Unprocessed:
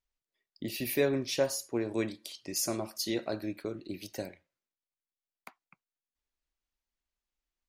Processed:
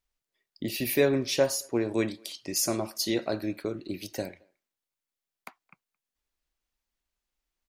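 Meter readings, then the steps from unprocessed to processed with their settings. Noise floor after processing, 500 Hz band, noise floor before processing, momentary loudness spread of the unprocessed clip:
under -85 dBFS, +4.5 dB, under -85 dBFS, 12 LU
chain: speakerphone echo 220 ms, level -29 dB; trim +4.5 dB

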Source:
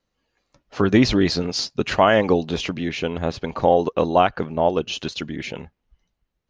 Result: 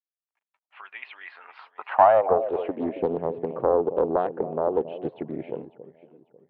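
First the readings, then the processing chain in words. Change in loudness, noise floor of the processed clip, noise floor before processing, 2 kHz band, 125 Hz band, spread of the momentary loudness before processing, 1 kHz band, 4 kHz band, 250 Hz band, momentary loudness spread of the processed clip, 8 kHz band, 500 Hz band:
-3.5 dB, under -85 dBFS, -78 dBFS, -11.5 dB, -15.0 dB, 13 LU, -2.0 dB, under -25 dB, -11.0 dB, 23 LU, no reading, -2.5 dB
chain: steep low-pass 3.2 kHz 36 dB/octave; treble shelf 2.3 kHz -3.5 dB; in parallel at +2.5 dB: compression, threshold -24 dBFS, peak gain reduction 12.5 dB; on the sum: high-pass sweep 2.4 kHz -> 130 Hz, 1.15–3.33 s; word length cut 10-bit, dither none; on a send: echo whose repeats swap between lows and highs 273 ms, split 830 Hz, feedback 55%, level -12 dB; on the sum: band-pass sweep 900 Hz -> 440 Hz, 1.93–3.12 s; loudspeaker Doppler distortion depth 0.3 ms; trim -4 dB

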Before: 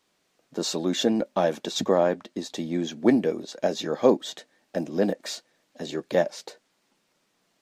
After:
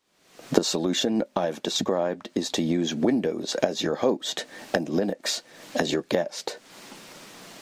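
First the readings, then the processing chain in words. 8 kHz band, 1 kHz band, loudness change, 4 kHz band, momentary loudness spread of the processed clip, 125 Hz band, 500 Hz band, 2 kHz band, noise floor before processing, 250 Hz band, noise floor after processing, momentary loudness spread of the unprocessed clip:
+4.5 dB, -0.5 dB, -0.5 dB, +4.0 dB, 18 LU, +1.5 dB, -1.5 dB, +3.5 dB, -72 dBFS, 0.0 dB, -61 dBFS, 14 LU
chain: recorder AGC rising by 62 dB/s; trim -4.5 dB

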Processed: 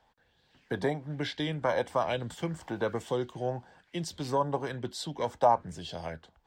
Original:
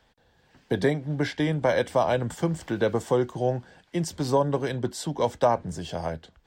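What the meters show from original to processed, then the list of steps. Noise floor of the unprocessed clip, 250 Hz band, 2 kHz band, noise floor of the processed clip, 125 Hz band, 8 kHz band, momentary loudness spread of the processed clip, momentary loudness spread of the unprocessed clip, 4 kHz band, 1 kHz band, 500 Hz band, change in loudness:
-64 dBFS, -8.0 dB, -5.5 dB, -69 dBFS, -8.0 dB, -6.5 dB, 12 LU, 9 LU, -2.0 dB, -1.5 dB, -6.5 dB, -5.5 dB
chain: sweeping bell 1.1 Hz 800–4000 Hz +11 dB; trim -8 dB

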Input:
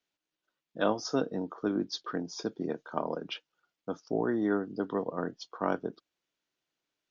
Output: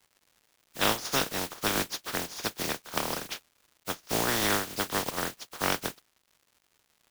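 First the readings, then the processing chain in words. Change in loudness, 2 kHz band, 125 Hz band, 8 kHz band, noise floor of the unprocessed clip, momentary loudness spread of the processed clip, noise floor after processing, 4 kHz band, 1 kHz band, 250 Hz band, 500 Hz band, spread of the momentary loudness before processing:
+3.5 dB, +10.0 dB, +2.5 dB, no reading, under -85 dBFS, 12 LU, -73 dBFS, +11.0 dB, +4.5 dB, -4.5 dB, -2.5 dB, 12 LU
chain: spectral contrast reduction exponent 0.21; crackle 280 per s -52 dBFS; trim +2 dB

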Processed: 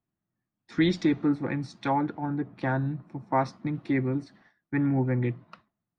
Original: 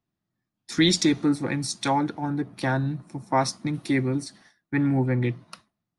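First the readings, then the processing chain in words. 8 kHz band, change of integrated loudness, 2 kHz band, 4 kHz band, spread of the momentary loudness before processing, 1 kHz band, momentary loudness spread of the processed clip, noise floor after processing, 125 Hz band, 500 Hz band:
under -20 dB, -3.5 dB, -4.5 dB, -13.0 dB, 10 LU, -2.5 dB, 8 LU, under -85 dBFS, -2.5 dB, -2.5 dB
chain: low-pass 2.2 kHz 12 dB/octave; trim -2.5 dB

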